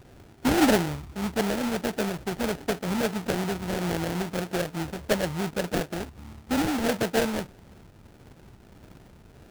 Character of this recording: phasing stages 4, 1.6 Hz, lowest notch 710–1500 Hz; aliases and images of a low sample rate 1.1 kHz, jitter 20%

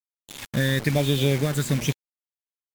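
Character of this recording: phasing stages 8, 1.1 Hz, lowest notch 750–1800 Hz; a quantiser's noise floor 6-bit, dither none; MP3

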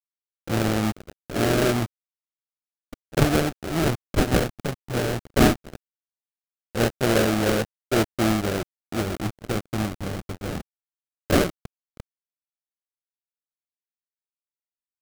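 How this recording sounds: a quantiser's noise floor 6-bit, dither none; phasing stages 4, 0.16 Hz, lowest notch 400–1000 Hz; aliases and images of a low sample rate 1 kHz, jitter 20%

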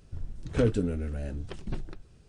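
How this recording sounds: noise floor -57 dBFS; spectral tilt -8.0 dB/octave

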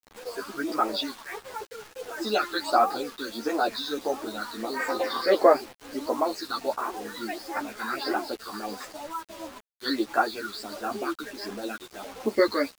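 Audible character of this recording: phasing stages 6, 1.5 Hz, lowest notch 590–4100 Hz; a quantiser's noise floor 8-bit, dither none; a shimmering, thickened sound

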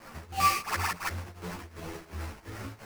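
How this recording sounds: a quantiser's noise floor 8-bit, dither triangular; tremolo triangle 2.8 Hz, depth 90%; aliases and images of a low sample rate 3.6 kHz, jitter 20%; a shimmering, thickened sound

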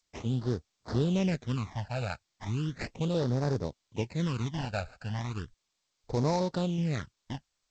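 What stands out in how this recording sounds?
aliases and images of a low sample rate 3.2 kHz, jitter 20%; phasing stages 12, 0.36 Hz, lowest notch 330–2800 Hz; G.722

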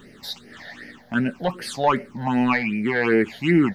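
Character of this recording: a quantiser's noise floor 12-bit, dither none; phasing stages 8, 2.6 Hz, lowest notch 330–1100 Hz

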